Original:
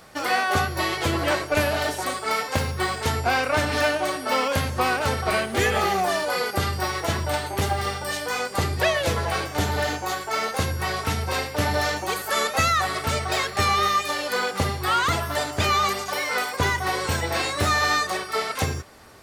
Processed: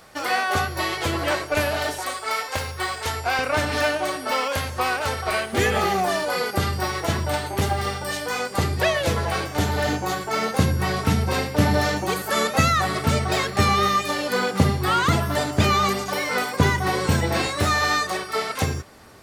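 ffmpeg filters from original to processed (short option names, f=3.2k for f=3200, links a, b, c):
-af "asetnsamples=n=441:p=0,asendcmd='1.98 equalizer g -12;3.39 equalizer g -0.5;4.31 equalizer g -7.5;5.53 equalizer g 4;9.84 equalizer g 11.5;17.47 equalizer g 3.5',equalizer=f=180:t=o:w=1.9:g=-2.5"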